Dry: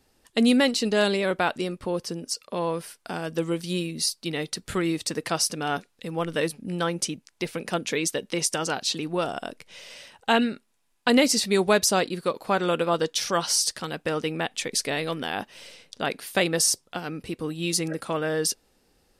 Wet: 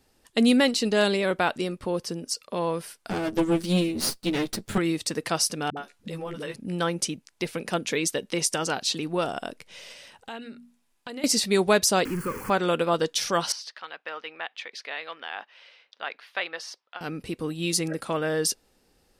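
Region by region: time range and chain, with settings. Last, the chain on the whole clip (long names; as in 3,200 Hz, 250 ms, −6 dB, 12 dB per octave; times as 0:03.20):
0:03.10–0:04.78: lower of the sound and its delayed copy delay 9.4 ms + parametric band 210 Hz +7.5 dB 1.8 octaves
0:05.70–0:06.56: double-tracking delay 14 ms −5 dB + downward compressor, threshold −30 dBFS + all-pass dispersion highs, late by 68 ms, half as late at 310 Hz
0:09.92–0:11.24: mains-hum notches 60/120/180/240 Hz + downward compressor 2.5 to 1, threshold −43 dBFS
0:12.05–0:12.50: converter with a step at zero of −25.5 dBFS + de-essing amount 60% + phaser with its sweep stopped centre 1,600 Hz, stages 4
0:13.52–0:17.01: high-pass filter 1,000 Hz + high-frequency loss of the air 290 metres
whole clip: no processing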